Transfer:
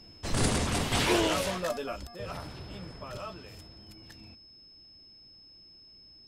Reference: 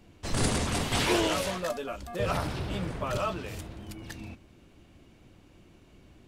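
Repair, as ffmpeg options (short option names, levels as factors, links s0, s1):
-af "bandreject=f=5200:w=30,asetnsamples=n=441:p=0,asendcmd='2.07 volume volume 10dB',volume=1"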